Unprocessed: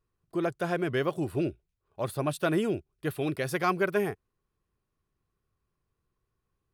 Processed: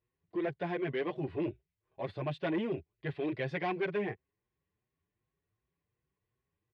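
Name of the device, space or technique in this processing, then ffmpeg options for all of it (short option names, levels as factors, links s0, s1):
barber-pole flanger into a guitar amplifier: -filter_complex "[0:a]asplit=2[s0][s1];[s1]adelay=6.2,afreqshift=2.7[s2];[s0][s2]amix=inputs=2:normalize=1,asoftclip=type=tanh:threshold=0.0473,highpass=76,equalizer=f=230:t=q:w=4:g=-3,equalizer=f=1300:t=q:w=4:g=-10,equalizer=f=2000:t=q:w=4:g=6,lowpass=f=3600:w=0.5412,lowpass=f=3600:w=1.3066"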